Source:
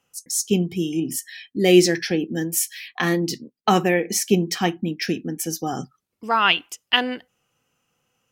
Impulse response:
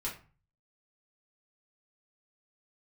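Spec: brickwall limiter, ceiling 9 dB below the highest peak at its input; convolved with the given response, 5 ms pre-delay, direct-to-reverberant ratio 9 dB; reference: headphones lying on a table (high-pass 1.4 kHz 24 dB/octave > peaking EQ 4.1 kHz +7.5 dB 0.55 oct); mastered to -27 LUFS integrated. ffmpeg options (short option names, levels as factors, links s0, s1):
-filter_complex "[0:a]alimiter=limit=0.266:level=0:latency=1,asplit=2[s0][s1];[1:a]atrim=start_sample=2205,adelay=5[s2];[s1][s2]afir=irnorm=-1:irlink=0,volume=0.282[s3];[s0][s3]amix=inputs=2:normalize=0,highpass=f=1400:w=0.5412,highpass=f=1400:w=1.3066,equalizer=f=4100:t=o:w=0.55:g=7.5"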